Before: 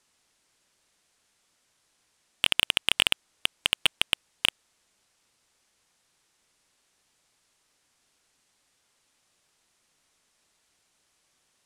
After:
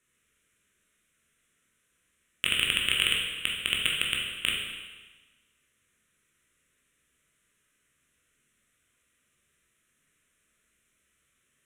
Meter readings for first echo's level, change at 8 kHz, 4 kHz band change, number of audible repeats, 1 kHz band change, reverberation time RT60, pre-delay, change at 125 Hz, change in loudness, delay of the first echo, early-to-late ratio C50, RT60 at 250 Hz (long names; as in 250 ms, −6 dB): no echo audible, −1.0 dB, −1.5 dB, no echo audible, −4.5 dB, 1.3 s, 14 ms, +3.5 dB, −1.0 dB, no echo audible, 2.0 dB, 1.3 s